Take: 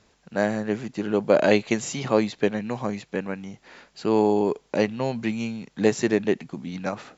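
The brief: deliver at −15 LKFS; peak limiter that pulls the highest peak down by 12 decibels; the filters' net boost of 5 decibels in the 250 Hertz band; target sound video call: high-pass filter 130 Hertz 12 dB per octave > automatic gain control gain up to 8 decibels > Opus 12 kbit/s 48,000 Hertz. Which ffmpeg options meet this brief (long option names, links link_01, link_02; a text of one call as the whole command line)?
ffmpeg -i in.wav -af "equalizer=frequency=250:width_type=o:gain=7,alimiter=limit=-13.5dB:level=0:latency=1,highpass=130,dynaudnorm=maxgain=8dB,volume=11.5dB" -ar 48000 -c:a libopus -b:a 12k out.opus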